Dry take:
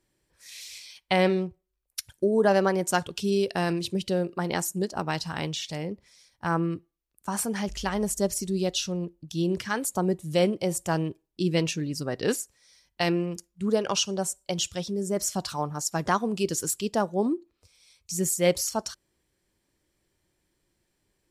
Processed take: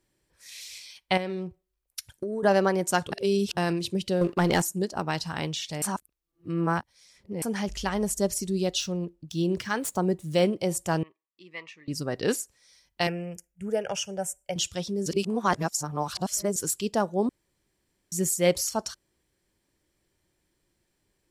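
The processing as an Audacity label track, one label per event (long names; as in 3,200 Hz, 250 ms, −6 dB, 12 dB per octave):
1.170000	2.430000	downward compressor, threshold −28 dBFS
3.120000	3.570000	reverse
4.210000	4.620000	leveller curve on the samples passes 2
5.820000	7.420000	reverse
8.800000	10.510000	running median over 3 samples
11.030000	11.880000	pair of resonant band-passes 1,500 Hz, apart 0.75 octaves
13.070000	14.560000	phaser with its sweep stopped centre 1,100 Hz, stages 6
15.060000	16.560000	reverse
17.290000	18.120000	fill with room tone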